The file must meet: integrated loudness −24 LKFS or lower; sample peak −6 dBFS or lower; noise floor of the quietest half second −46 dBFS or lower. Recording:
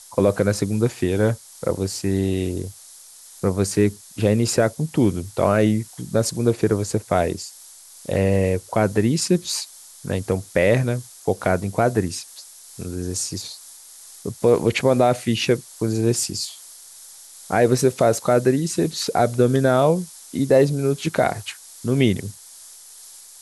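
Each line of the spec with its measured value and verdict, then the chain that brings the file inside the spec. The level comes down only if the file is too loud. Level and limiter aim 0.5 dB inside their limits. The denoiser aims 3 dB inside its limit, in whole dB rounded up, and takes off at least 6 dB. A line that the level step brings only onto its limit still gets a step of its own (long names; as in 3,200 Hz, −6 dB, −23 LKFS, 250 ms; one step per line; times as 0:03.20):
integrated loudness −21.0 LKFS: out of spec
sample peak −5.0 dBFS: out of spec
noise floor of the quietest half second −45 dBFS: out of spec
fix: level −3.5 dB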